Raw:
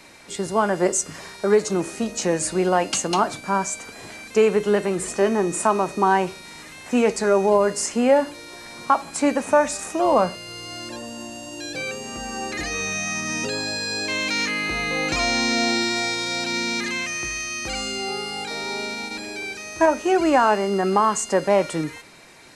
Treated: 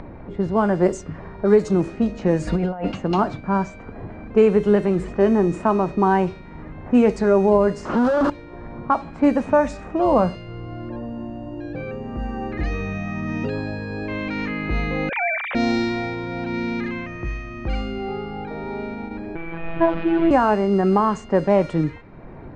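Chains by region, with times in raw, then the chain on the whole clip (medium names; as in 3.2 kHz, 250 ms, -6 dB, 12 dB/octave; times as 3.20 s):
2.47–2.94 s: comb 4.2 ms, depth 52% + compressor with a negative ratio -27 dBFS
7.85–8.30 s: one-bit comparator + high-pass 220 Hz 6 dB/octave + resonant high shelf 1.7 kHz -7.5 dB, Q 3
15.09–15.55 s: formants replaced by sine waves + low-pass 2.9 kHz + tilt EQ +3.5 dB/octave
19.35–20.31 s: one-bit delta coder 32 kbps, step -19.5 dBFS + low-pass 3 kHz 24 dB/octave + robot voice 166 Hz
whole clip: RIAA curve playback; level-controlled noise filter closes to 950 Hz, open at -11 dBFS; upward compressor, threshold -26 dBFS; trim -1.5 dB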